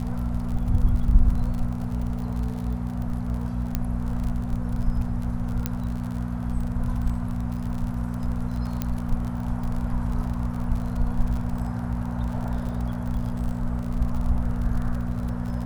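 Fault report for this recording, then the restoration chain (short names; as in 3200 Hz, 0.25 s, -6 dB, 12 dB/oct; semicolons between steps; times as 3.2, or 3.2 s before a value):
crackle 42/s -31 dBFS
hum 60 Hz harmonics 4 -29 dBFS
3.75 pop -11 dBFS
5.66 pop -10 dBFS
8.82 pop -12 dBFS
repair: de-click; de-hum 60 Hz, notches 4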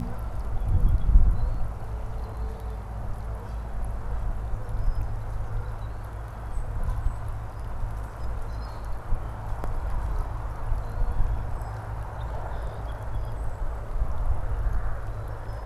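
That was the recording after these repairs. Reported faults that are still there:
none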